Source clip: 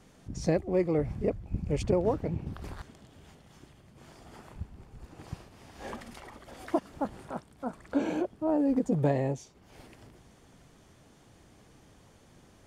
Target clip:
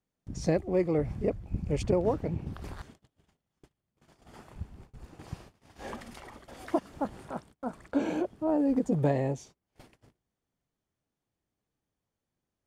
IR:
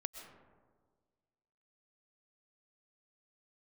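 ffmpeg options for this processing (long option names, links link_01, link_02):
-af "agate=range=-29dB:threshold=-50dB:ratio=16:detection=peak"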